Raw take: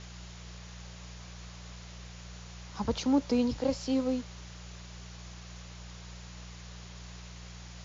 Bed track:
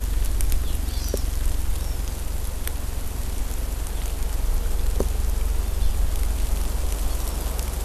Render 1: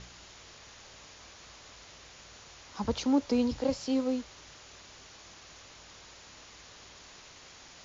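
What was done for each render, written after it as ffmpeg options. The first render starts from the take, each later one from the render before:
-af "bandreject=f=60:t=h:w=4,bandreject=f=120:t=h:w=4,bandreject=f=180:t=h:w=4"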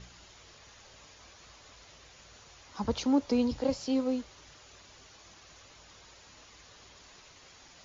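-af "afftdn=nr=6:nf=-53"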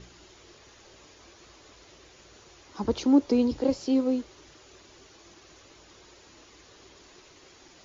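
-af "equalizer=f=350:w=2:g=12"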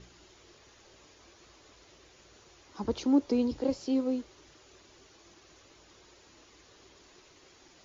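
-af "volume=0.596"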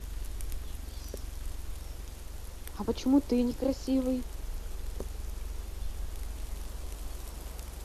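-filter_complex "[1:a]volume=0.178[s0];[0:a][s0]amix=inputs=2:normalize=0"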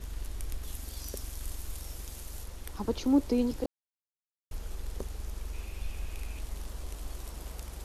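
-filter_complex "[0:a]asettb=1/sr,asplit=3[s0][s1][s2];[s0]atrim=end=0.634[s3];[s1]atrim=start=0.63:end=2.44,asetpts=PTS-STARTPTS,afade=t=in:d=0.004:c=qsin,afade=t=out:st=1.806:d=0.004:c=qsin,aemphasis=mode=production:type=cd[s4];[s2]atrim=start=2.436[s5];[s3][s4]acrossfade=d=0.004:c1=hsin:c2=qsin[s6];[s6][s5]acrossfade=d=0.004:c1=qsin:c2=hsin,asettb=1/sr,asplit=3[s7][s8][s9];[s7]atrim=end=5.534[s10];[s8]atrim=start=5.53:end=6.4,asetpts=PTS-STARTPTS,afade=t=in:d=0.004:c=qsin,afade=t=out:st=0.866:d=0.004:c=qsin,equalizer=f=2500:t=o:w=0.25:g=13.5[s11];[s9]atrim=start=6.396[s12];[s10][s11]acrossfade=d=0.004:c1=hsin:c2=qsin[s13];[s13][s12]acrossfade=d=0.004:c1=qsin:c2=hsin,asplit=3[s14][s15][s16];[s14]atrim=end=3.66,asetpts=PTS-STARTPTS,afade=t=out:st=3.656:d=0.004:c=hsin[s17];[s15]atrim=start=3.66:end=4.51,asetpts=PTS-STARTPTS,volume=0[s18];[s16]atrim=start=4.51,asetpts=PTS-STARTPTS,afade=t=in:d=0.004:c=hsin[s19];[s17][s18][s19]concat=n=3:v=0:a=1"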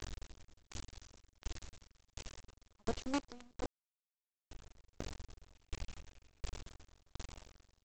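-af "aresample=16000,acrusher=bits=4:dc=4:mix=0:aa=0.000001,aresample=44100,aeval=exprs='val(0)*pow(10,-33*if(lt(mod(1.4*n/s,1),2*abs(1.4)/1000),1-mod(1.4*n/s,1)/(2*abs(1.4)/1000),(mod(1.4*n/s,1)-2*abs(1.4)/1000)/(1-2*abs(1.4)/1000))/20)':c=same"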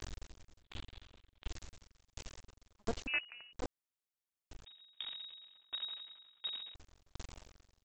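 -filter_complex "[0:a]asettb=1/sr,asplit=3[s0][s1][s2];[s0]atrim=end=0.624[s3];[s1]atrim=start=0.62:end=1.48,asetpts=PTS-STARTPTS,afade=t=in:d=0.004:c=qsin,afade=t=out:st=0.856:d=0.004:c=qsin,highshelf=f=4500:t=q:w=3:g=-8.5[s4];[s2]atrim=start=1.476[s5];[s3][s4]acrossfade=d=0.004:c1=hsin:c2=qsin[s6];[s6][s5]acrossfade=d=0.004:c1=qsin:c2=hsin,asettb=1/sr,asplit=3[s7][s8][s9];[s7]atrim=end=3.074[s10];[s8]atrim=start=3.07:end=3.53,asetpts=PTS-STARTPTS,afade=t=in:d=0.004:c=qsin,afade=t=out:st=0.456:d=0.004:c=qsin,lowpass=f=2500:t=q:w=0.5098,lowpass=f=2500:t=q:w=0.6013,lowpass=f=2500:t=q:w=0.9,lowpass=f=2500:t=q:w=2.563,afreqshift=-2900[s11];[s9]atrim=start=3.526[s12];[s10][s11]acrossfade=d=0.004:c1=hsin:c2=qsin[s13];[s13][s12]acrossfade=d=0.004:c1=qsin:c2=hsin,asettb=1/sr,asplit=3[s14][s15][s16];[s14]atrim=end=4.654[s17];[s15]atrim=start=4.65:end=6.75,asetpts=PTS-STARTPTS,afade=t=in:d=0.004:c=qsin,afade=t=out:st=2.096:d=0.004:c=qsin,lowpass=f=3200:t=q:w=0.5098,lowpass=f=3200:t=q:w=0.6013,lowpass=f=3200:t=q:w=0.9,lowpass=f=3200:t=q:w=2.563,afreqshift=-3800[s18];[s16]atrim=start=6.746[s19];[s17][s18]acrossfade=d=0.004:c1=hsin:c2=qsin[s20];[s20][s19]acrossfade=d=0.004:c1=qsin:c2=hsin"

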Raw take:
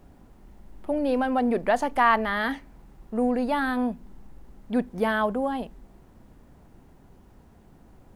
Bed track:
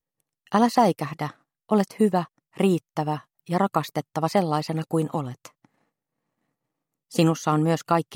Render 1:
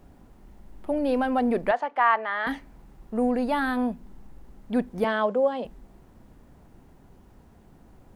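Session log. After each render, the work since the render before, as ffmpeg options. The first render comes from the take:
-filter_complex "[0:a]asettb=1/sr,asplit=3[s0][s1][s2];[s0]atrim=end=1.714[s3];[s1]atrim=start=1.71:end=2.47,asetpts=PTS-STARTPTS,afade=t=in:d=0.004:c=qsin,afade=t=out:st=0.756:d=0.004:c=qsin,highpass=590,lowpass=2400[s4];[s2]atrim=start=2.466[s5];[s3][s4]acrossfade=d=0.004:c1=hsin:c2=qsin[s6];[s6][s5]acrossfade=d=0.004:c1=qsin:c2=hsin,asettb=1/sr,asplit=3[s7][s8][s9];[s7]atrim=end=5.044[s10];[s8]atrim=start=5.04:end=5.65,asetpts=PTS-STARTPTS,afade=t=in:d=0.004:c=qsin,afade=t=out:st=0.606:d=0.004:c=qsin,highpass=f=200:w=0.5412,highpass=f=200:w=1.3066,equalizer=f=300:t=q:w=4:g=-9,equalizer=f=530:t=q:w=4:g=9,equalizer=f=780:t=q:w=4:g=-3,equalizer=f=1600:t=q:w=4:g=-3,lowpass=f=7300:w=0.5412,lowpass=f=7300:w=1.3066[s11];[s9]atrim=start=5.646[s12];[s10][s11]acrossfade=d=0.004:c1=hsin:c2=qsin[s13];[s13][s12]acrossfade=d=0.004:c1=qsin:c2=hsin"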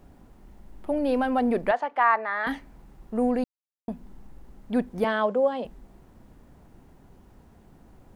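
-filter_complex "[0:a]asettb=1/sr,asplit=3[s0][s1][s2];[s0]atrim=end=2.034[s3];[s1]atrim=start=2.03:end=2.44,asetpts=PTS-STARTPTS,afade=t=in:d=0.004:c=qsin,afade=t=out:st=0.406:d=0.004:c=qsin,asuperstop=centerf=3100:order=4:qfactor=4.3[s4];[s2]atrim=start=2.436[s5];[s3][s4]acrossfade=d=0.004:c1=hsin:c2=qsin[s6];[s6][s5]acrossfade=d=0.004:c1=qsin:c2=hsin,asplit=3[s7][s8][s9];[s7]atrim=end=3.44,asetpts=PTS-STARTPTS,afade=t=out:st=3.436:d=0.004:c=hsin[s10];[s8]atrim=start=3.44:end=3.88,asetpts=PTS-STARTPTS,volume=0[s11];[s9]atrim=start=3.88,asetpts=PTS-STARTPTS,afade=t=in:d=0.004:c=hsin[s12];[s10][s11][s12]concat=n=3:v=0:a=1"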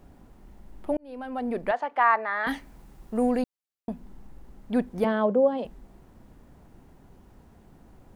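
-filter_complex "[0:a]asettb=1/sr,asplit=3[s0][s1][s2];[s0]atrim=end=2.484[s3];[s1]atrim=start=2.48:end=3.42,asetpts=PTS-STARTPTS,afade=t=in:d=0.004:c=qsin,afade=t=out:st=0.936:d=0.004:c=qsin,highshelf=f=3400:g=7[s4];[s2]atrim=start=3.416[s5];[s3][s4]acrossfade=d=0.004:c1=hsin:c2=qsin[s6];[s6][s5]acrossfade=d=0.004:c1=qsin:c2=hsin,asplit=3[s7][s8][s9];[s7]afade=t=out:st=5.04:d=0.02[s10];[s8]tiltshelf=f=670:g=7.5,afade=t=in:st=5.04:d=0.02,afade=t=out:st=5.57:d=0.02[s11];[s9]afade=t=in:st=5.57:d=0.02[s12];[s10][s11][s12]amix=inputs=3:normalize=0,asplit=2[s13][s14];[s13]atrim=end=0.97,asetpts=PTS-STARTPTS,afade=t=out:st=0.966:d=0.004:c=hsin[s15];[s14]atrim=start=0.97,asetpts=PTS-STARTPTS,afade=t=in:d=1.01[s16];[s15][s16]concat=n=2:v=0:a=1"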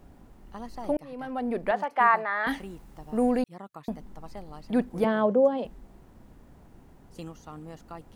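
-filter_complex "[1:a]volume=0.0841[s0];[0:a][s0]amix=inputs=2:normalize=0"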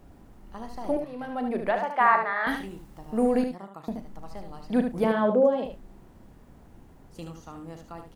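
-filter_complex "[0:a]asplit=2[s0][s1];[s1]adelay=36,volume=0.251[s2];[s0][s2]amix=inputs=2:normalize=0,asplit=2[s3][s4];[s4]aecho=0:1:75:0.447[s5];[s3][s5]amix=inputs=2:normalize=0"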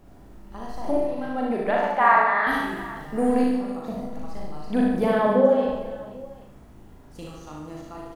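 -filter_complex "[0:a]asplit=2[s0][s1];[s1]adelay=39,volume=0.668[s2];[s0][s2]amix=inputs=2:normalize=0,aecho=1:1:60|150|285|487.5|791.2:0.631|0.398|0.251|0.158|0.1"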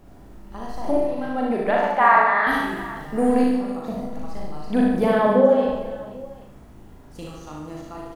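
-af "volume=1.33,alimiter=limit=0.708:level=0:latency=1"

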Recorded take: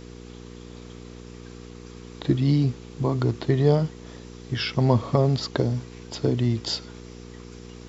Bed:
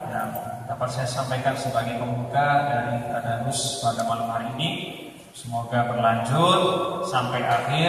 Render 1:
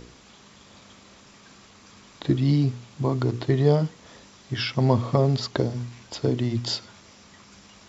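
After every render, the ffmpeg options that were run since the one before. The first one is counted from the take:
-af "bandreject=f=60:t=h:w=4,bandreject=f=120:t=h:w=4,bandreject=f=180:t=h:w=4,bandreject=f=240:t=h:w=4,bandreject=f=300:t=h:w=4,bandreject=f=360:t=h:w=4,bandreject=f=420:t=h:w=4,bandreject=f=480:t=h:w=4"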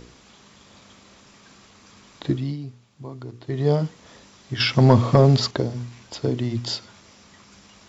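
-filter_complex "[0:a]asettb=1/sr,asplit=3[s0][s1][s2];[s0]atrim=end=4.604[s3];[s1]atrim=start=4.6:end=5.51,asetpts=PTS-STARTPTS,afade=t=in:d=0.004:c=qsin,afade=t=out:st=0.906:d=0.004:c=qsin,acontrast=80[s4];[s2]atrim=start=5.506[s5];[s3][s4]acrossfade=d=0.004:c1=hsin:c2=qsin[s6];[s6][s5]acrossfade=d=0.004:c1=qsin:c2=hsin,asplit=3[s7][s8][s9];[s7]atrim=end=2.57,asetpts=PTS-STARTPTS,afade=t=out:st=2.27:d=0.3:silence=0.237137[s10];[s8]atrim=start=2.57:end=3.42,asetpts=PTS-STARTPTS,volume=0.237[s11];[s9]atrim=start=3.42,asetpts=PTS-STARTPTS,afade=t=in:d=0.3:silence=0.237137[s12];[s10][s11][s12]concat=n=3:v=0:a=1"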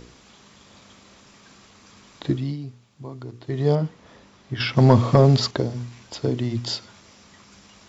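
-filter_complex "[0:a]asettb=1/sr,asplit=3[s0][s1][s2];[s0]atrim=end=3.754[s3];[s1]atrim=start=3.75:end=4.77,asetpts=PTS-STARTPTS,afade=t=in:d=0.004:c=qsin,afade=t=out:st=1.016:d=0.004:c=qsin,lowpass=f=2400:p=1[s4];[s2]atrim=start=4.766[s5];[s3][s4]acrossfade=d=0.004:c1=hsin:c2=qsin[s6];[s6][s5]acrossfade=d=0.004:c1=qsin:c2=hsin"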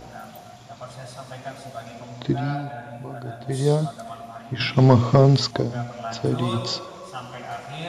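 -filter_complex "[1:a]volume=0.251[s0];[0:a][s0]amix=inputs=2:normalize=0"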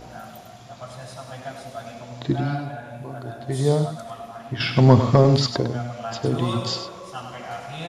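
-af "aecho=1:1:99:0.355"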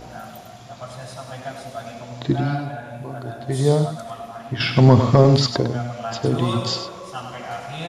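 -af "volume=1.33,alimiter=limit=0.794:level=0:latency=1"

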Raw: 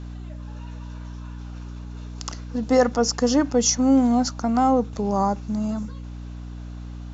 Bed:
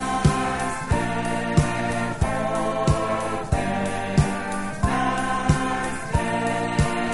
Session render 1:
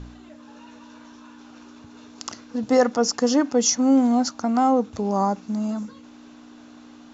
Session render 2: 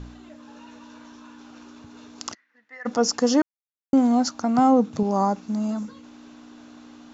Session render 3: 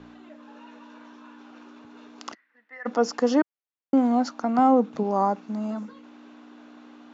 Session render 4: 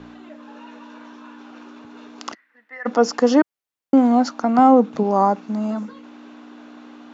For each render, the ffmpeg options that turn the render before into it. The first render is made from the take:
-af "bandreject=f=60:t=h:w=4,bandreject=f=120:t=h:w=4,bandreject=f=180:t=h:w=4"
-filter_complex "[0:a]asplit=3[s0][s1][s2];[s0]afade=t=out:st=2.33:d=0.02[s3];[s1]bandpass=f=1900:t=q:w=13,afade=t=in:st=2.33:d=0.02,afade=t=out:st=2.85:d=0.02[s4];[s2]afade=t=in:st=2.85:d=0.02[s5];[s3][s4][s5]amix=inputs=3:normalize=0,asettb=1/sr,asplit=3[s6][s7][s8];[s6]atrim=end=4.584[s9];[s7]atrim=start=4.58:end=5.03,asetpts=PTS-STARTPTS,afade=t=in:d=0.004:c=qsin,afade=t=out:st=0.446:d=0.004:c=qsin,highpass=f=150:t=q:w=4.9[s10];[s8]atrim=start=5.026[s11];[s9][s10]acrossfade=d=0.004:c1=hsin:c2=qsin[s12];[s12][s11]acrossfade=d=0.004:c1=qsin:c2=hsin,asplit=3[s13][s14][s15];[s13]atrim=end=3.42,asetpts=PTS-STARTPTS,afade=t=out:st=3.416:d=0.004:c=hsin[s16];[s14]atrim=start=3.42:end=3.93,asetpts=PTS-STARTPTS,volume=0[s17];[s15]atrim=start=3.93,asetpts=PTS-STARTPTS,afade=t=in:d=0.004:c=hsin[s18];[s16][s17][s18]concat=n=3:v=0:a=1"
-filter_complex "[0:a]acrossover=split=200 3500:gain=0.1 1 0.2[s0][s1][s2];[s0][s1][s2]amix=inputs=3:normalize=0"
-af "volume=2"

